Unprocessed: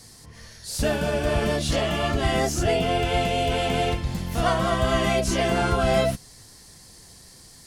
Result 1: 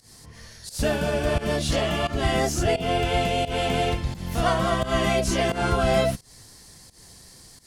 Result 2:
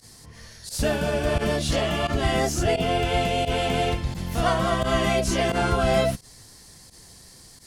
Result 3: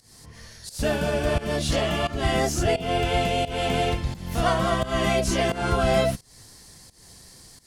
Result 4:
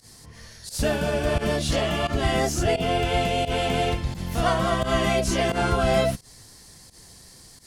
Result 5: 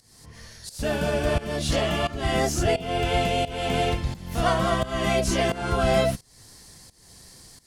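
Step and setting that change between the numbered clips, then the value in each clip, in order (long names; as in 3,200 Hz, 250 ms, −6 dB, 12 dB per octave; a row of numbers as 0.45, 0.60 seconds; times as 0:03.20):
fake sidechain pumping, release: 170, 62, 254, 98, 397 milliseconds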